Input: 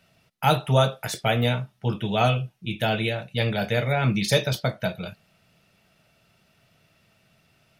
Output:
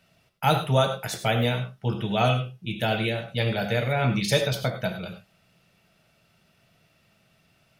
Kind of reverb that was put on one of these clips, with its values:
reverb whose tail is shaped and stops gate 120 ms rising, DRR 8 dB
level −1.5 dB

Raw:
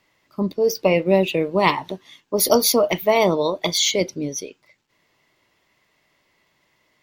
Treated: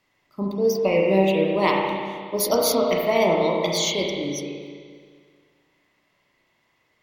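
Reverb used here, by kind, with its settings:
spring reverb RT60 1.9 s, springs 31/35 ms, chirp 65 ms, DRR −1.5 dB
level −5.5 dB

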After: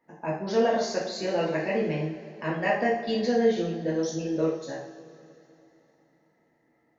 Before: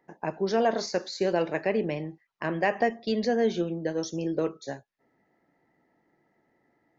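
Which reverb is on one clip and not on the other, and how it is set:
coupled-rooms reverb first 0.55 s, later 3.3 s, from −18 dB, DRR −6.5 dB
level −6.5 dB

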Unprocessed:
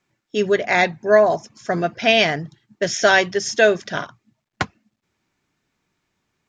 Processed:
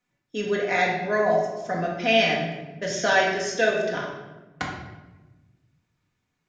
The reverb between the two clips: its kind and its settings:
rectangular room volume 630 cubic metres, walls mixed, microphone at 1.9 metres
level −9.5 dB

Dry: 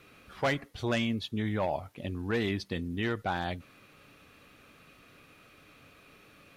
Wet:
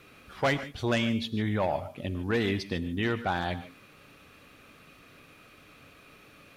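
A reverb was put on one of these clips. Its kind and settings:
reverb whose tail is shaped and stops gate 170 ms rising, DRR 12 dB
level +2.5 dB

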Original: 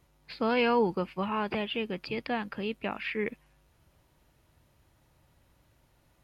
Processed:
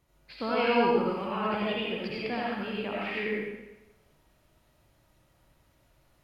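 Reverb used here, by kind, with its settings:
comb and all-pass reverb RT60 0.98 s, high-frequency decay 0.95×, pre-delay 40 ms, DRR −5.5 dB
level −5 dB

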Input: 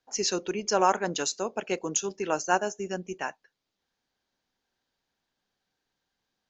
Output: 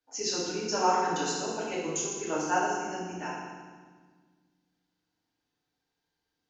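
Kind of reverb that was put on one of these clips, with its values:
feedback delay network reverb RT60 1.5 s, low-frequency decay 1.6×, high-frequency decay 0.9×, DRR −8.5 dB
level −11 dB

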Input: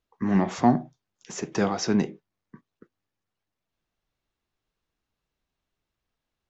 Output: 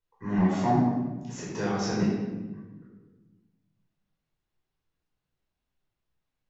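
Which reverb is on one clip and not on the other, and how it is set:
rectangular room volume 820 cubic metres, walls mixed, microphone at 4.8 metres
level −12.5 dB

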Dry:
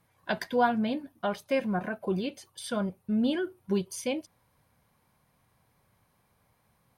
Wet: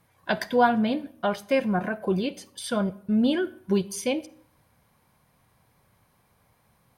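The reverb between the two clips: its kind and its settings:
comb and all-pass reverb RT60 0.6 s, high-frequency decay 0.7×, pre-delay 10 ms, DRR 18 dB
level +4.5 dB

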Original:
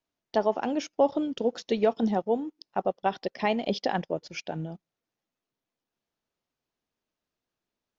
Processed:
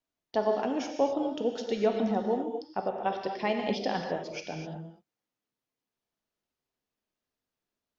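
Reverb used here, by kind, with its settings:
reverb whose tail is shaped and stops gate 280 ms flat, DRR 2.5 dB
level −4 dB

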